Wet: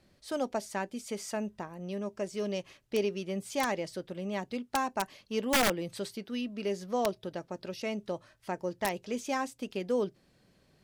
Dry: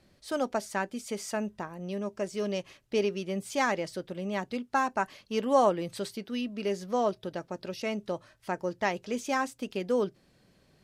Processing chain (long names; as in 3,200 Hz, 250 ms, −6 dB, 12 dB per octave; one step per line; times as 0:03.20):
dynamic equaliser 1,400 Hz, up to −5 dB, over −45 dBFS, Q 2.1
wrap-around overflow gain 17.5 dB
level −2 dB